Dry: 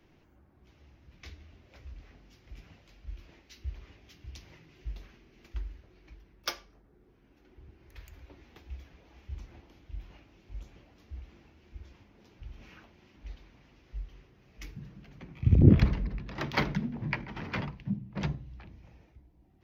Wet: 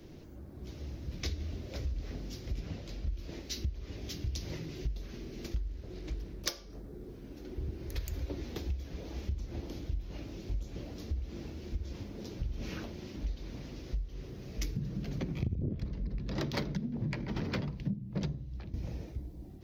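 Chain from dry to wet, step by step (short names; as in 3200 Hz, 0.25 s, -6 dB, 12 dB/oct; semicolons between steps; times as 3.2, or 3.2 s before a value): one diode to ground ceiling -16 dBFS; AGC gain up to 4 dB; 18.2–18.74 expander -36 dBFS; band shelf 1500 Hz -9.5 dB 2.3 oct; compressor 20:1, threshold -44 dBFS, peak gain reduction 33.5 dB; 2.56–3.13 high shelf 5800 Hz -7 dB; 5.65–6.49 Doppler distortion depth 0.66 ms; gain +13 dB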